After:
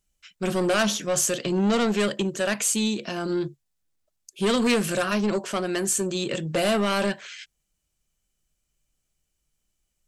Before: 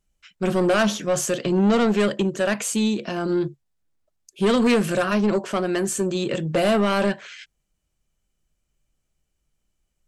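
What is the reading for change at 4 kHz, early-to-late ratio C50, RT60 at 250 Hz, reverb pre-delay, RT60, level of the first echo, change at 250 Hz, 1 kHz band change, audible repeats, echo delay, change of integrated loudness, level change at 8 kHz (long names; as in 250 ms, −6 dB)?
+1.5 dB, no reverb audible, no reverb audible, no reverb audible, no reverb audible, no echo audible, −4.0 dB, −3.0 dB, no echo audible, no echo audible, −2.5 dB, +3.5 dB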